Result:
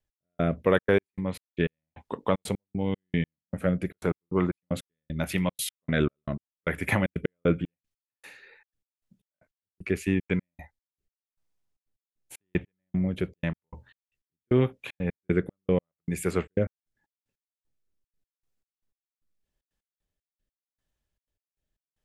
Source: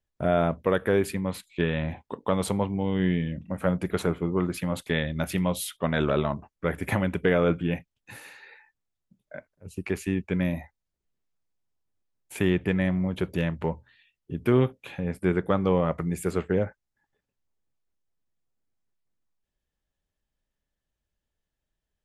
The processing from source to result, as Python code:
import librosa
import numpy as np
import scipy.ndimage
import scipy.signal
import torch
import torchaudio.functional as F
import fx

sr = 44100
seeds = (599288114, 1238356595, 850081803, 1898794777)

y = fx.rotary(x, sr, hz=0.85)
y = fx.step_gate(y, sr, bpm=153, pattern='x...xxxx.x..xx..', floor_db=-60.0, edge_ms=4.5)
y = fx.dynamic_eq(y, sr, hz=2200.0, q=2.0, threshold_db=-54.0, ratio=4.0, max_db=5)
y = F.gain(torch.from_numpy(y), 2.0).numpy()